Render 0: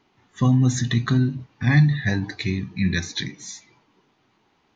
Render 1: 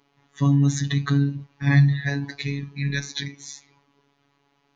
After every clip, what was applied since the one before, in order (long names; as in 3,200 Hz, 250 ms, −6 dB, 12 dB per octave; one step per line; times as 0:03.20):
phases set to zero 141 Hz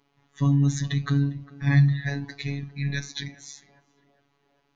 low-shelf EQ 73 Hz +10 dB
feedback echo with a band-pass in the loop 403 ms, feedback 72%, band-pass 580 Hz, level −16 dB
level −4 dB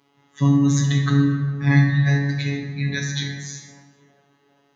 high-pass filter 98 Hz
dense smooth reverb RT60 1.5 s, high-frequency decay 0.55×, DRR 1 dB
level +4.5 dB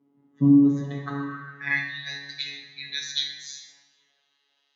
band-pass filter sweep 250 Hz → 3,800 Hz, 0:00.45–0:02.06
level +4 dB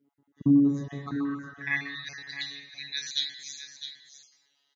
time-frequency cells dropped at random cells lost 23%
high-shelf EQ 4,900 Hz +5.5 dB
single-tap delay 657 ms −10.5 dB
level −4 dB